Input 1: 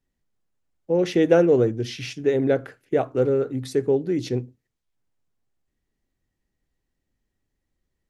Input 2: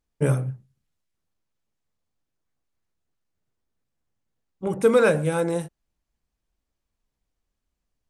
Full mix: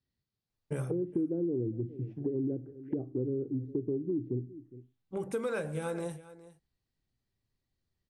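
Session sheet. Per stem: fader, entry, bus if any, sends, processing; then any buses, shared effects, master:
-5.5 dB, 0.00 s, no send, echo send -24 dB, HPF 44 Hz 12 dB/oct; bell 110 Hz +11 dB 1.6 oct; envelope low-pass 320–4500 Hz down, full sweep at -21.5 dBFS
-4.0 dB, 0.50 s, no send, echo send -19 dB, dry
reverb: off
echo: echo 0.41 s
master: resonator 390 Hz, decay 0.19 s, harmonics all, mix 50%; compressor 4:1, threshold -31 dBFS, peak gain reduction 14 dB

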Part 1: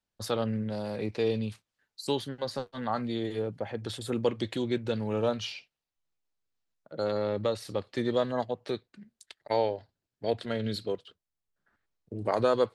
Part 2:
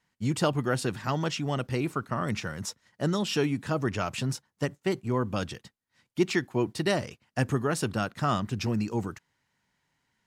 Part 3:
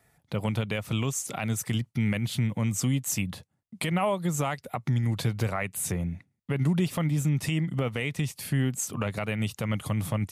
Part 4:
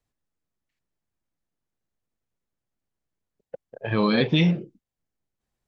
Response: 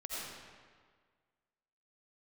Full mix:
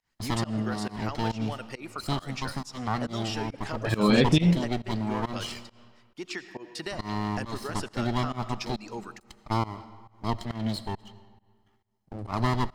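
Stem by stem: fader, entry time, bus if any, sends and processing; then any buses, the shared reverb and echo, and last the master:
-0.5 dB, 0.00 s, no bus, send -15.5 dB, minimum comb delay 0.97 ms
-1.0 dB, 0.00 s, bus A, send -17.5 dB, reverb removal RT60 0.64 s; weighting filter A
off
-1.5 dB, 0.00 s, no bus, no send, dry
bus A: 0.0 dB, compressor, threshold -35 dBFS, peak gain reduction 11.5 dB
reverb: on, RT60 1.7 s, pre-delay 45 ms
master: bell 5000 Hz +3.5 dB 0.42 oct; pump 137 bpm, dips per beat 1, -22 dB, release 0.156 s; low shelf 470 Hz +3.5 dB

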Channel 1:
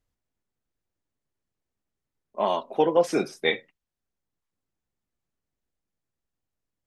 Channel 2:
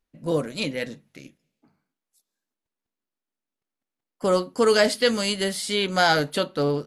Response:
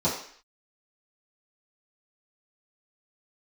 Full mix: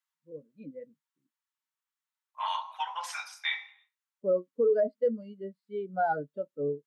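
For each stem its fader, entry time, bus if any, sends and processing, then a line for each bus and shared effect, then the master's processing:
-1.5 dB, 0.00 s, send -18 dB, steep high-pass 920 Hz 48 dB/oct
-6.5 dB, 0.00 s, no send, high shelf 2900 Hz -10.5 dB; AGC gain up to 11.5 dB; spectral expander 2.5:1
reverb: on, RT60 0.55 s, pre-delay 3 ms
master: limiter -18.5 dBFS, peak gain reduction 10.5 dB

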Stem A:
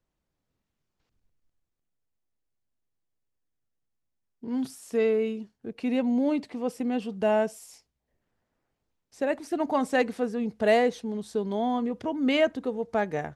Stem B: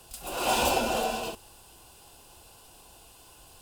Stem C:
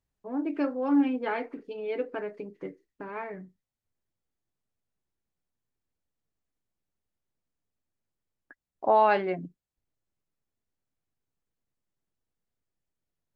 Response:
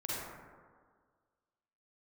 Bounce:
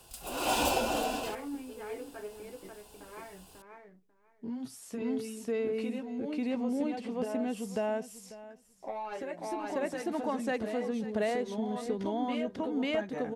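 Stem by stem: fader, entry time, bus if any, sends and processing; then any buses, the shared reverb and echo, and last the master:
+1.0 dB, 0.00 s, bus A, no send, echo send -3.5 dB, compressor 2.5:1, threshold -29 dBFS, peak gain reduction 8.5 dB
-3.5 dB, 0.00 s, no bus, no send, no echo send, dry
-11.0 dB, 0.00 s, bus A, no send, echo send -8.5 dB, sample leveller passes 1
bus A: 0.0 dB, chorus voices 4, 0.19 Hz, delay 14 ms, depth 4.8 ms; compressor, threshold -35 dBFS, peak gain reduction 10.5 dB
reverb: off
echo: feedback echo 0.543 s, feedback 15%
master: dry

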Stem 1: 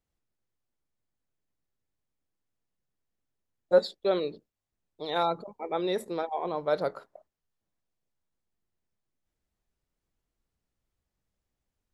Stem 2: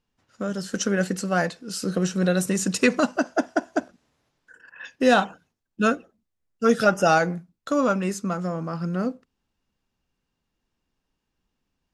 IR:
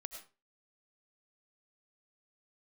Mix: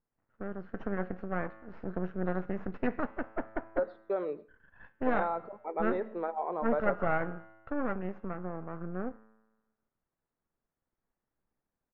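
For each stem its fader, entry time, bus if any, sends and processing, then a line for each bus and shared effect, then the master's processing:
-1.5 dB, 0.05 s, send -8.5 dB, HPF 390 Hz 6 dB/oct; compressor, threshold -28 dBFS, peak gain reduction 10.5 dB
-0.5 dB, 0.00 s, no send, resonator 110 Hz, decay 1.2 s, harmonics all, mix 60%; half-wave rectifier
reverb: on, RT60 0.30 s, pre-delay 60 ms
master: LPF 1800 Hz 24 dB/oct

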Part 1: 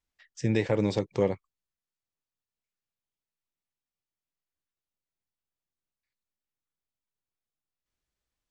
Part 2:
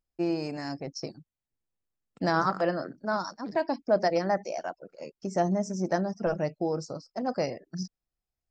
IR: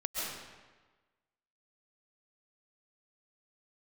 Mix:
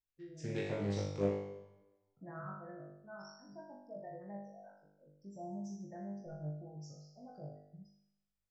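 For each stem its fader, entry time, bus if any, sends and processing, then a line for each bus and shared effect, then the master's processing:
0.0 dB, 0.00 s, send -20.5 dB, dry
0.0 dB, 0.00 s, no send, spectral gate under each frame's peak -15 dB strong; graphic EQ 125/250/500/1000/2000 Hz +9/-10/-9/-9/-8 dB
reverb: on, RT60 1.3 s, pre-delay 95 ms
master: resonator 50 Hz, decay 0.78 s, harmonics all, mix 100%; Doppler distortion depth 0.27 ms

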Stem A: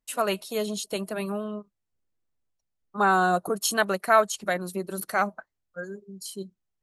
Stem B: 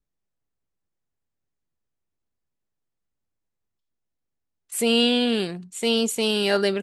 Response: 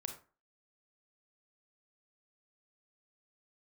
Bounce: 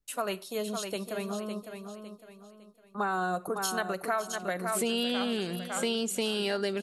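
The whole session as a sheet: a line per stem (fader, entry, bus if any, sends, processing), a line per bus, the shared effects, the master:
-6.0 dB, 0.00 s, send -9.5 dB, echo send -6.5 dB, gate with hold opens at -42 dBFS
-0.5 dB, 0.00 s, no send, echo send -22.5 dB, dry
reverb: on, RT60 0.35 s, pre-delay 28 ms
echo: feedback echo 0.556 s, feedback 35%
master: compressor 6:1, threshold -27 dBFS, peak gain reduction 10.5 dB

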